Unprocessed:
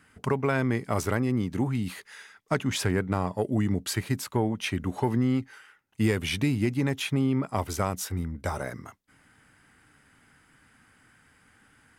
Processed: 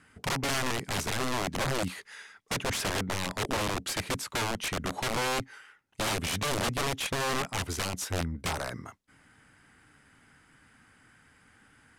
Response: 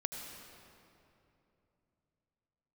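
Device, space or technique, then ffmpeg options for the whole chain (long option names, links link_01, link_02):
overflowing digital effects unit: -af "aeval=exprs='(mod(15.8*val(0)+1,2)-1)/15.8':channel_layout=same,lowpass=11000"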